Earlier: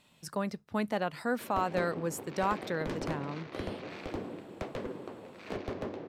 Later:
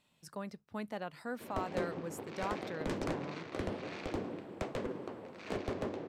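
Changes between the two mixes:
speech −9.0 dB
background: add parametric band 8,000 Hz +5.5 dB 0.68 octaves

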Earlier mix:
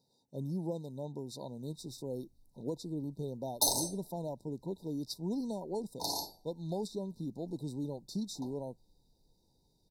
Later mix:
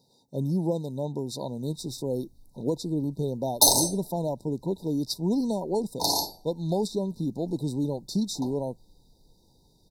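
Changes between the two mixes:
speech +10.0 dB
background +10.5 dB

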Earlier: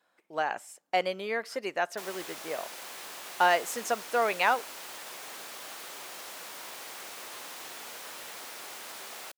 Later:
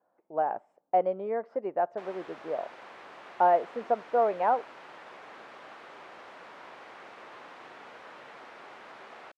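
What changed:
speech: add low-pass with resonance 740 Hz, resonance Q 1.5
background: add low-pass filter 1,800 Hz 12 dB per octave

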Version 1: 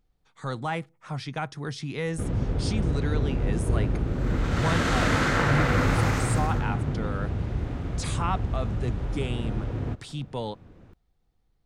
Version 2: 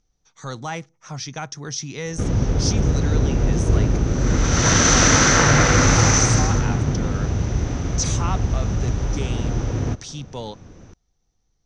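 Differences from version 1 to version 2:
background +7.0 dB
master: add low-pass with resonance 6,000 Hz, resonance Q 16

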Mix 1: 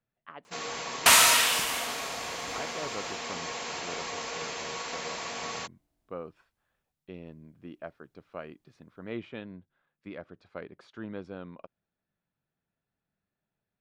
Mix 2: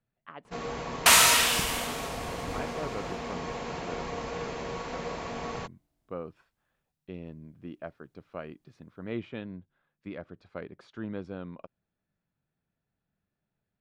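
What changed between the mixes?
speech: add low-shelf EQ 240 Hz +6 dB
first sound: add spectral tilt −4 dB per octave

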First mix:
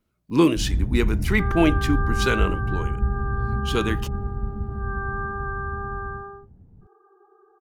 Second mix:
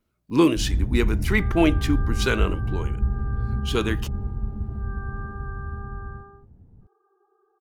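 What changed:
second sound −9.5 dB
master: add parametric band 170 Hz −3 dB 0.48 octaves

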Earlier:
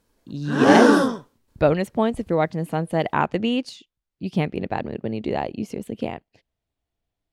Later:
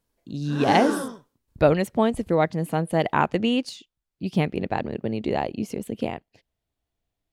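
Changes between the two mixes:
background −11.0 dB
master: add high-shelf EQ 7,900 Hz +6.5 dB

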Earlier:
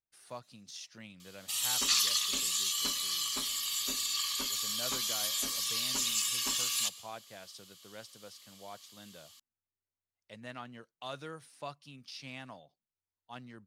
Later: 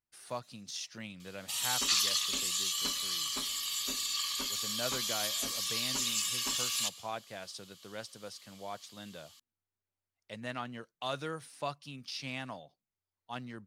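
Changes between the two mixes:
speech +5.5 dB
background: add high-shelf EQ 9,100 Hz −4.5 dB

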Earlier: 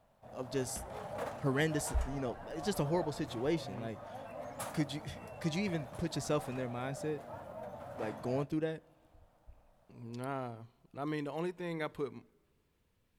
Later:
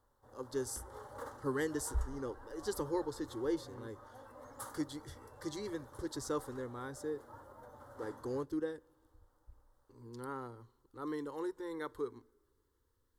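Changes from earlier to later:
background: send −9.5 dB
master: add phaser with its sweep stopped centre 670 Hz, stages 6

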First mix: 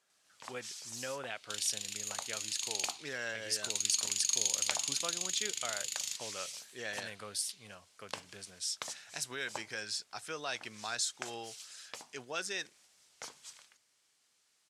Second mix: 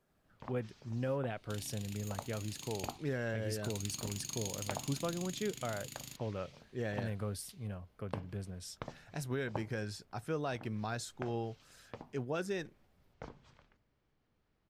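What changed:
first sound: add high-frequency loss of the air 190 metres
master: remove meter weighting curve ITU-R 468

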